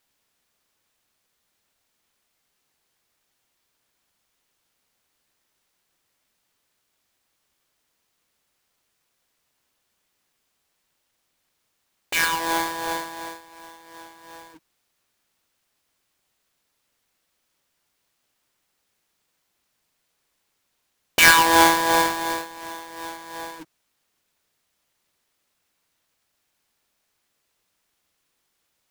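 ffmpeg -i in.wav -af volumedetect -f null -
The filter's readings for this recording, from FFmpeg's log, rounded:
mean_volume: -30.1 dB
max_volume: -2.8 dB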